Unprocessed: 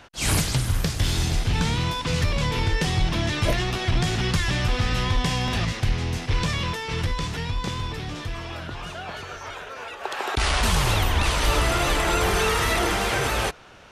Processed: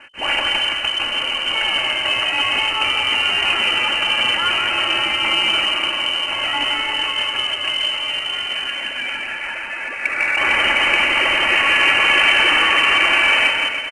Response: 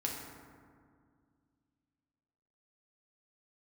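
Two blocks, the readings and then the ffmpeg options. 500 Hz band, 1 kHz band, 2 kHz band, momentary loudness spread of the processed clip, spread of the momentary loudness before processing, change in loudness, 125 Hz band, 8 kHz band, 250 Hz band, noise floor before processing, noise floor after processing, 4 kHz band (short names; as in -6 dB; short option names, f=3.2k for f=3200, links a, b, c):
0.0 dB, +5.5 dB, +13.0 dB, 9 LU, 13 LU, +8.5 dB, -20.5 dB, -5.5 dB, -5.0 dB, -38 dBFS, -27 dBFS, +13.0 dB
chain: -af "bandreject=f=48.81:t=h:w=4,bandreject=f=97.62:t=h:w=4,bandreject=f=146.43:t=h:w=4,bandreject=f=195.24:t=h:w=4,afftfilt=real='re*lt(hypot(re,im),0.501)':imag='im*lt(hypot(re,im),0.501)':win_size=1024:overlap=0.75,adynamicequalizer=threshold=0.00398:dfrequency=780:dqfactor=7:tfrequency=780:tqfactor=7:attack=5:release=100:ratio=0.375:range=3:mode=boostabove:tftype=bell,aecho=1:1:3.6:0.53,aecho=1:1:170|297.5|393.1|464.8|518.6:0.631|0.398|0.251|0.158|0.1,lowpass=f=2.6k:t=q:w=0.5098,lowpass=f=2.6k:t=q:w=0.6013,lowpass=f=2.6k:t=q:w=0.9,lowpass=f=2.6k:t=q:w=2.563,afreqshift=-3100,volume=6dB" -ar 22050 -c:a adpcm_ima_wav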